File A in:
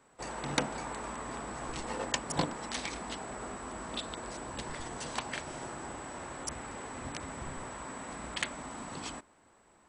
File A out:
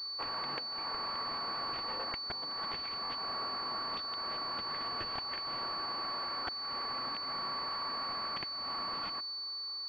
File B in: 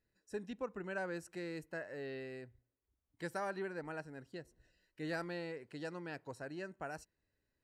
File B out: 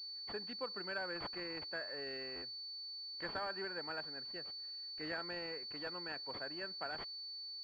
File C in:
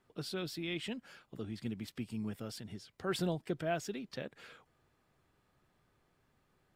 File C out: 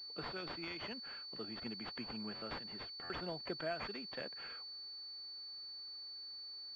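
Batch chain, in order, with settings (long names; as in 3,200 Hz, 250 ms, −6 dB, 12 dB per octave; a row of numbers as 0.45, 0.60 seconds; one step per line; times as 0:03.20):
high-pass filter 120 Hz 24 dB per octave
spectral tilt +4 dB per octave
downward compressor 12 to 1, threshold −37 dBFS
buffer that repeats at 0:02.35/0:03.03, samples 512, times 5
switching amplifier with a slow clock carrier 4,500 Hz
level +2 dB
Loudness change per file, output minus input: +3.0, +2.0, −4.0 LU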